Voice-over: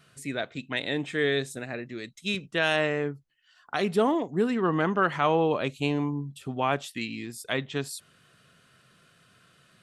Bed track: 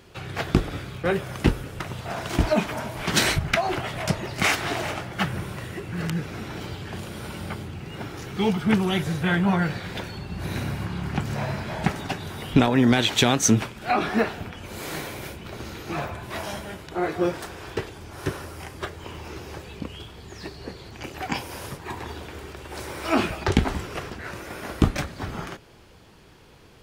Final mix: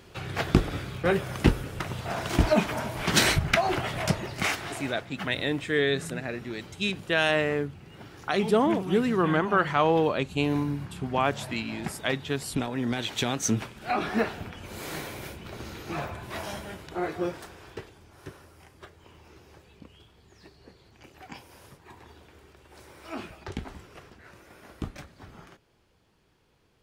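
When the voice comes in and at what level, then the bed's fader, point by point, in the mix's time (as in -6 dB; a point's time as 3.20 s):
4.55 s, +1.0 dB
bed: 4.05 s -0.5 dB
4.92 s -11.5 dB
12.74 s -11.5 dB
14.22 s -3.5 dB
16.90 s -3.5 dB
18.32 s -15.5 dB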